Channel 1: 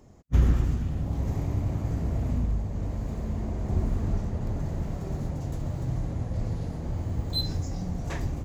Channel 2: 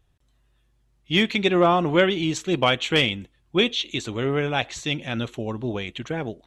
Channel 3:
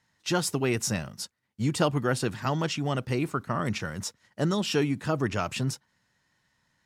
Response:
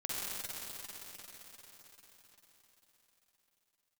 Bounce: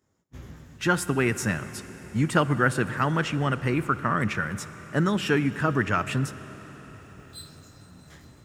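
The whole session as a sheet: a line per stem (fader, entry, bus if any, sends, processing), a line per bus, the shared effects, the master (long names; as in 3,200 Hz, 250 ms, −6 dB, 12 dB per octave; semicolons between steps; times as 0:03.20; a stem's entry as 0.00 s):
−11.0 dB, 0.00 s, send −12.5 dB, lower of the sound and its delayed copy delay 0.57 ms; spectral tilt +1.5 dB per octave; micro pitch shift up and down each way 20 cents
muted
+2.5 dB, 0.55 s, send −17 dB, drawn EQ curve 250 Hz 0 dB, 740 Hz −4 dB, 1,600 Hz +7 dB, 4,800 Hz −11 dB, 8,300 Hz −4 dB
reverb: on, RT60 5.0 s, pre-delay 44 ms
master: high-pass filter 70 Hz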